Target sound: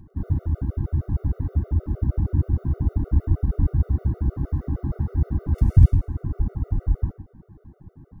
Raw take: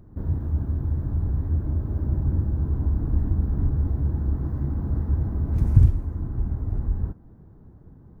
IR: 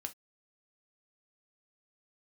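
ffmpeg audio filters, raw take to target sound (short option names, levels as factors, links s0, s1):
-filter_complex "[0:a]asplit=2[s0][s1];[1:a]atrim=start_sample=2205,asetrate=48510,aresample=44100,adelay=103[s2];[s1][s2]afir=irnorm=-1:irlink=0,volume=0.473[s3];[s0][s3]amix=inputs=2:normalize=0,afftfilt=real='re*gt(sin(2*PI*6.4*pts/sr)*(1-2*mod(floor(b*sr/1024/380),2)),0)':imag='im*gt(sin(2*PI*6.4*pts/sr)*(1-2*mod(floor(b*sr/1024/380),2)),0)':win_size=1024:overlap=0.75,volume=1.58"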